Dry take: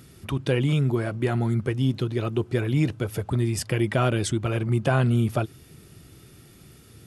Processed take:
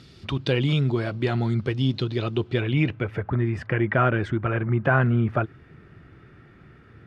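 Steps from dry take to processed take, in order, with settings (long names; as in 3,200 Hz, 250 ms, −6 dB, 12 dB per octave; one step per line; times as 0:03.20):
low-pass filter sweep 4,300 Hz → 1,700 Hz, 0:02.30–0:03.29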